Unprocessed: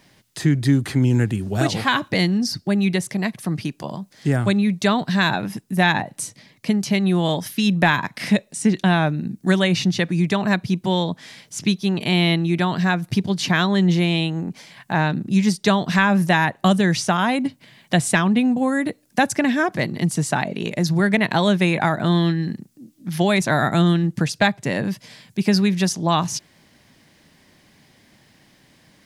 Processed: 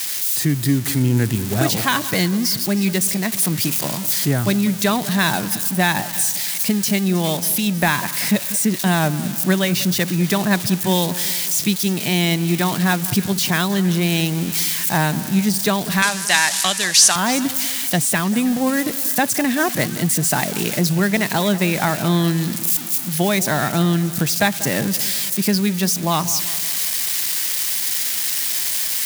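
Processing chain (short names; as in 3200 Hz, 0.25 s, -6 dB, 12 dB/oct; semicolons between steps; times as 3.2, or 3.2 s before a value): switching spikes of -14.5 dBFS; vocal rider 0.5 s; 16.02–17.16 weighting filter ITU-R 468; on a send: split-band echo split 1700 Hz, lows 0.191 s, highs 0.316 s, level -15.5 dB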